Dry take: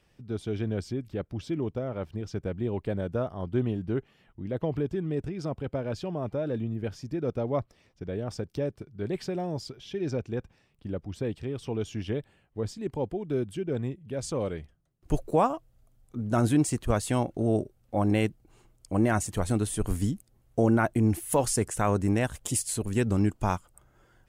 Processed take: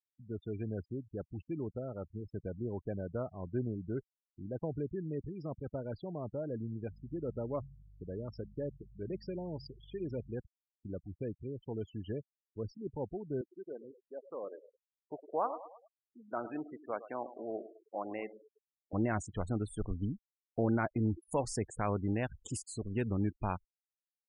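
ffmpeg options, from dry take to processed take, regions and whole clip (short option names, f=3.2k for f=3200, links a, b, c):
-filter_complex "[0:a]asettb=1/sr,asplit=3[a][b][c];[a]atrim=end=6.884[d];[b]atrim=start=6.88:end=10.36,asetpts=PTS-STARTPTS,afade=t=in:d=0.004:c=qsin,afade=t=out:st=3.476:d=0.004:c=qsin,bandreject=f=740:w=7.1,bandreject=f=68.42:t=h:w=4,bandreject=f=136.84:t=h:w=4,bandreject=f=205.26:t=h:w=4,aeval=exprs='val(0)+0.00447*(sin(2*PI*50*n/s)+sin(2*PI*2*50*n/s)/2+sin(2*PI*3*50*n/s)/3+sin(2*PI*4*50*n/s)/4+sin(2*PI*5*50*n/s)/5)':c=same[e];[c]atrim=start=10.356[f];[d][e]acrossfade=d=0.004:c1=hsin:c2=qsin[g];[g][f]acrossfade=d=0.004:c1=qsin:c2=hsin,asettb=1/sr,asplit=3[h][i][j];[h]atrim=end=13.414[k];[i]atrim=start=13.41:end=18.93,asetpts=PTS-STARTPTS,afade=t=in:d=0.004:c=qsin,afade=t=out:st=5.516:d=0.004:c=qsin,highpass=480,lowpass=2k,aecho=1:1:106|212|318|424|530:0.224|0.119|0.0629|0.0333|0.0177,atrim=end_sample=243432[l];[j]atrim=start=18.926[m];[k][l]acrossfade=d=0.004:c1=hsin:c2=qsin[n];[n][m]acrossfade=d=0.004:c1=qsin:c2=hsin,agate=range=-33dB:threshold=-51dB:ratio=3:detection=peak,lowpass=7.3k,afftfilt=real='re*gte(hypot(re,im),0.02)':imag='im*gte(hypot(re,im),0.02)':win_size=1024:overlap=0.75,volume=-8dB"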